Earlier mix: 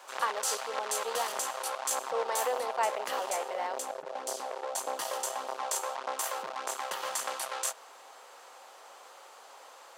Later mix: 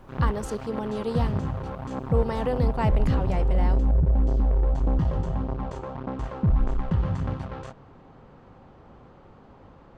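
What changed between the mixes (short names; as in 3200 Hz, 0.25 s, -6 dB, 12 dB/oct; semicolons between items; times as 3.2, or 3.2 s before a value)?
background: add tape spacing loss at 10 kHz 38 dB; master: remove HPF 550 Hz 24 dB/oct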